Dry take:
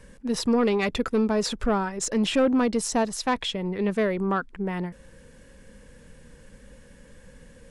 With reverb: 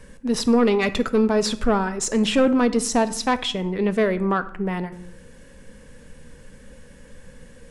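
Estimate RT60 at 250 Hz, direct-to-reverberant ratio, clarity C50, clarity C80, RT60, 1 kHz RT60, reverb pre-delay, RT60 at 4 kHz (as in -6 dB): 0.95 s, 11.5 dB, 16.0 dB, 19.0 dB, 0.65 s, 0.65 s, 3 ms, 0.45 s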